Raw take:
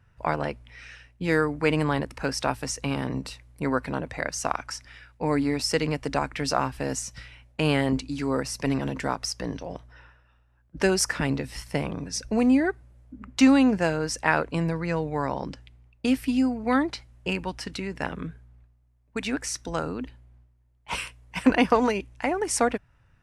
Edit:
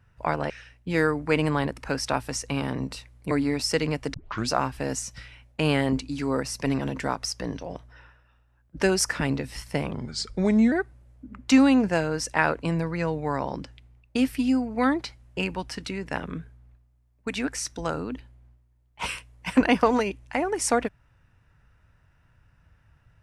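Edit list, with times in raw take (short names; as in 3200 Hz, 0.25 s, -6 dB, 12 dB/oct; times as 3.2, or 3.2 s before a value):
0.5–0.84 cut
3.65–5.31 cut
6.14 tape start 0.35 s
11.94–12.61 speed 86%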